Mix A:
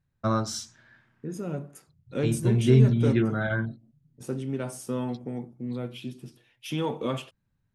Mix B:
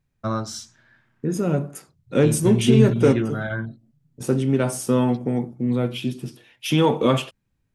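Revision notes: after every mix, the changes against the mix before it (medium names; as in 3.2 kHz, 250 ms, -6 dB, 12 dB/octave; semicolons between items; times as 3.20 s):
second voice +11.0 dB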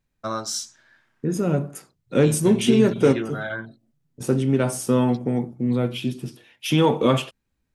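first voice: add tone controls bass -12 dB, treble +8 dB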